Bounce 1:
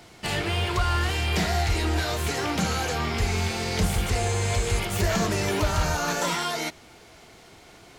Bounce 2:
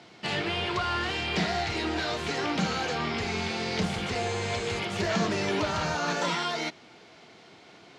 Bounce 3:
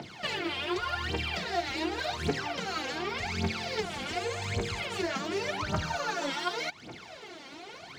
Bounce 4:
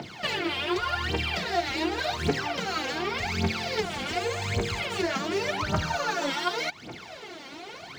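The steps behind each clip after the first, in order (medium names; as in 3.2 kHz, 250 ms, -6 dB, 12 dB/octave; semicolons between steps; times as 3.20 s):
Chebyshev band-pass 170–4400 Hz, order 2; trim -1 dB
compression 3:1, threshold -40 dBFS, peak gain reduction 13 dB; phaser 0.87 Hz, delay 3.8 ms, feedback 79%; trim +2.5 dB
median filter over 3 samples; trim +4 dB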